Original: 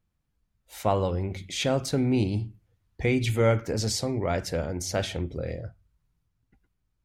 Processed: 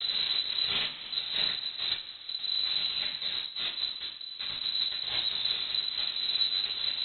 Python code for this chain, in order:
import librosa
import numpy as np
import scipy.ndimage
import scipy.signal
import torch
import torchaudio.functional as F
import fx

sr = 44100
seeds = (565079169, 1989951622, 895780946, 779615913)

y = x + 0.5 * 10.0 ** (-27.0 / 20.0) * np.sign(x)
y = scipy.signal.sosfilt(scipy.signal.butter(16, 190.0, 'highpass', fs=sr, output='sos'), y)
y = fx.peak_eq(y, sr, hz=2800.0, db=-6.0, octaves=0.34)
y = fx.over_compress(y, sr, threshold_db=-33.0, ratio=-1.0)
y = fx.schmitt(y, sr, flips_db=-25.0)
y = fx.rev_double_slope(y, sr, seeds[0], early_s=0.43, late_s=2.8, knee_db=-15, drr_db=-7.5)
y = fx.freq_invert(y, sr, carrier_hz=4000)
y = fx.am_noise(y, sr, seeds[1], hz=5.7, depth_pct=60)
y = y * 10.0 ** (-3.0 / 20.0)